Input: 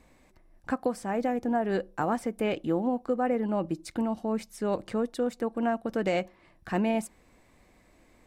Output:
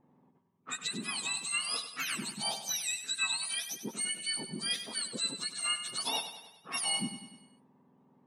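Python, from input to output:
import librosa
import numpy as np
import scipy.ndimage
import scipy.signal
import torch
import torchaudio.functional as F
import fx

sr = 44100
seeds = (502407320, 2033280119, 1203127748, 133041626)

y = fx.octave_mirror(x, sr, pivot_hz=1400.0)
y = fx.env_lowpass(y, sr, base_hz=850.0, full_db=-33.0)
y = fx.echo_feedback(y, sr, ms=98, feedback_pct=52, wet_db=-10.5)
y = y * 10.0 ** (-1.5 / 20.0)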